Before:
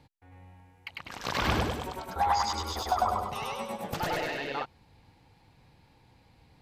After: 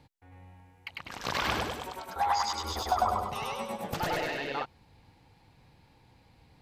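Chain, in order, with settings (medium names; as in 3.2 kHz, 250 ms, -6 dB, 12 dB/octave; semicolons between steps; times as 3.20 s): 1.37–2.64 s: bass shelf 370 Hz -9.5 dB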